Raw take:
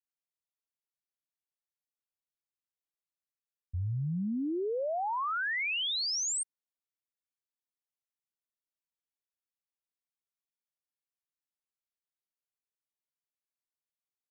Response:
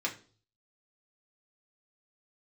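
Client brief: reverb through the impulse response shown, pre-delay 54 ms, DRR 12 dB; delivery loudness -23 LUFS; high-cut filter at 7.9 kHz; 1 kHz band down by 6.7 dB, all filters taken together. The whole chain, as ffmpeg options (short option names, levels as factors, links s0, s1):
-filter_complex "[0:a]lowpass=7900,equalizer=f=1000:t=o:g=-9,asplit=2[s0][s1];[1:a]atrim=start_sample=2205,adelay=54[s2];[s1][s2]afir=irnorm=-1:irlink=0,volume=0.133[s3];[s0][s3]amix=inputs=2:normalize=0,volume=3.16"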